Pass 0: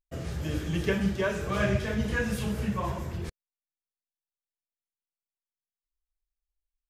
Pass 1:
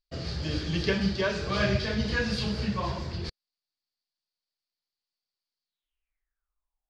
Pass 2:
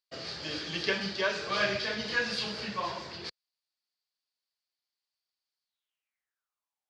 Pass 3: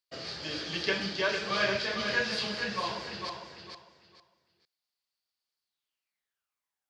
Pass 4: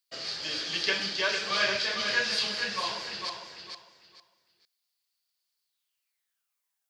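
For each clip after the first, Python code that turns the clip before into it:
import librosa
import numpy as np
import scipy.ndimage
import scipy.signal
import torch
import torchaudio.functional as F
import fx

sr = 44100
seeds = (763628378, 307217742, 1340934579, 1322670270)

y1 = fx.filter_sweep_lowpass(x, sr, from_hz=4600.0, to_hz=730.0, start_s=5.64, end_s=6.88, q=7.7)
y2 = fx.weighting(y1, sr, curve='A')
y3 = fx.echo_feedback(y2, sr, ms=452, feedback_pct=23, wet_db=-6.5)
y4 = fx.tilt_eq(y3, sr, slope=2.5)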